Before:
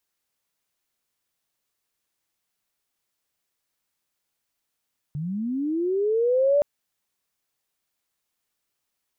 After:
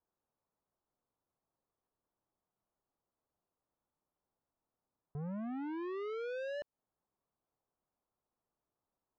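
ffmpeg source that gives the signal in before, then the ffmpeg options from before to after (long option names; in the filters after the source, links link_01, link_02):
-f lavfi -i "aevalsrc='pow(10,(-27+11.5*t/1.47)/20)*sin(2*PI*(140*t+450*t*t/(2*1.47)))':duration=1.47:sample_rate=44100"
-af "lowpass=frequency=1100:width=0.5412,lowpass=frequency=1100:width=1.3066,alimiter=level_in=2.5dB:limit=-24dB:level=0:latency=1:release=203,volume=-2.5dB,asoftclip=type=tanh:threshold=-39dB"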